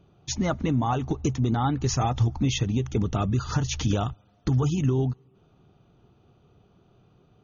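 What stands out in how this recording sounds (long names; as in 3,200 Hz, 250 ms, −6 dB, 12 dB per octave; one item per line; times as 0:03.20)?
background noise floor −61 dBFS
spectral slope −6.0 dB per octave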